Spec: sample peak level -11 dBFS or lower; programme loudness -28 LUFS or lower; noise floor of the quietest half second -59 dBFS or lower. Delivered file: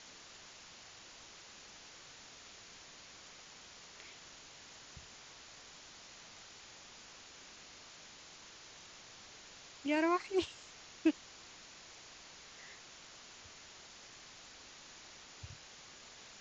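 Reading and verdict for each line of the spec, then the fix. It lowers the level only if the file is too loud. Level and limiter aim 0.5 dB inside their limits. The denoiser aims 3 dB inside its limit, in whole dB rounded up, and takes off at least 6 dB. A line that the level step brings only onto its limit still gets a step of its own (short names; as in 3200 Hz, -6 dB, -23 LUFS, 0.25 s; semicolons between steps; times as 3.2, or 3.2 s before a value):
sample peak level -19.0 dBFS: OK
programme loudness -45.0 LUFS: OK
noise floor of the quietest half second -55 dBFS: fail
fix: denoiser 7 dB, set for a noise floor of -55 dBFS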